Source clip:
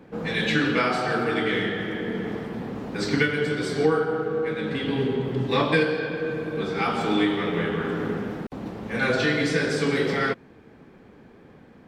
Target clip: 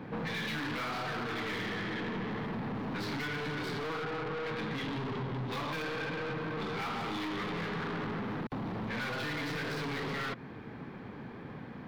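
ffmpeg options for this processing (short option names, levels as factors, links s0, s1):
-af "aeval=exprs='(tanh(63.1*val(0)+0.25)-tanh(0.25))/63.1':c=same,equalizer=f=125:t=o:w=1:g=9,equalizer=f=250:t=o:w=1:g=4,equalizer=f=1000:t=o:w=1:g=8,equalizer=f=2000:t=o:w=1:g=5,equalizer=f=4000:t=o:w=1:g=6,equalizer=f=8000:t=o:w=1:g=-7,acompressor=threshold=0.02:ratio=6"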